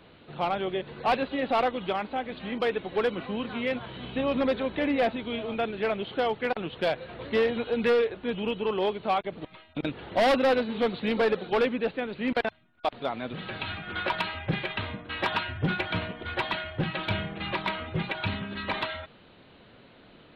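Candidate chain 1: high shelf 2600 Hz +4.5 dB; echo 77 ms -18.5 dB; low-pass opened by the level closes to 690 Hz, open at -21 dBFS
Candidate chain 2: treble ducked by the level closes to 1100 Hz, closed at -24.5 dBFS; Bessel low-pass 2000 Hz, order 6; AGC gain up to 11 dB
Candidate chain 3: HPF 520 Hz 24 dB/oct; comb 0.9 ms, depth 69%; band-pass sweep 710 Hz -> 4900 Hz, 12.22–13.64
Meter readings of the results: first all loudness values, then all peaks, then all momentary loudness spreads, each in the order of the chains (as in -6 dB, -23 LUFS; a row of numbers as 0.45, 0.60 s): -28.5, -19.5, -38.5 LUFS; -15.0, -7.5, -18.5 dBFS; 9, 9, 14 LU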